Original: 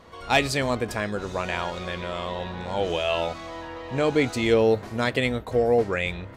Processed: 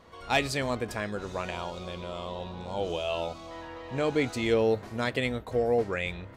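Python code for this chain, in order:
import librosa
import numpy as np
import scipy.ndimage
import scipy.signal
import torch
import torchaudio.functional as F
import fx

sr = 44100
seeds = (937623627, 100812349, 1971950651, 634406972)

y = fx.peak_eq(x, sr, hz=1800.0, db=-13.0, octaves=0.6, at=(1.5, 3.51))
y = y * librosa.db_to_amplitude(-5.0)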